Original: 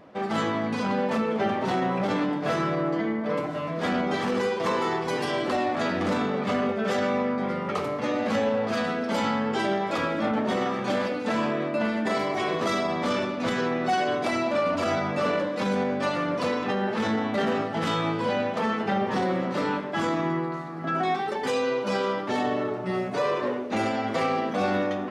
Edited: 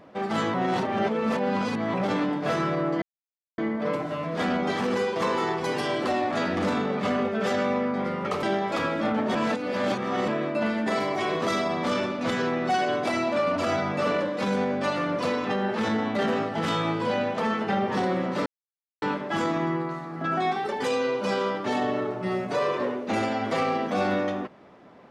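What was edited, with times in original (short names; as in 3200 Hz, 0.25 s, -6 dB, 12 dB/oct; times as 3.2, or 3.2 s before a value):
0.54–1.94 reverse
3.02 insert silence 0.56 s
7.87–9.62 cut
10.54–11.47 reverse
19.65 insert silence 0.56 s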